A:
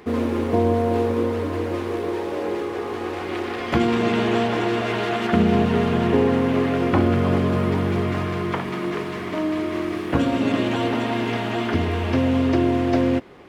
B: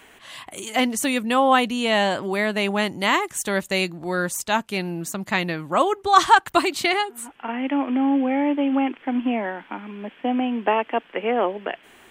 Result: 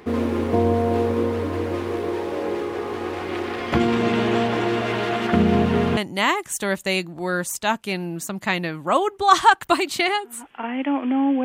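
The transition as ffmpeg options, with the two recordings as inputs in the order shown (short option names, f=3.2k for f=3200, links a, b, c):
-filter_complex "[0:a]apad=whole_dur=11.44,atrim=end=11.44,atrim=end=5.972[a];[1:a]atrim=start=2.818:end=8.29[b];[a][b]acrossfade=d=0.004:c1=hsin:c2=hsin"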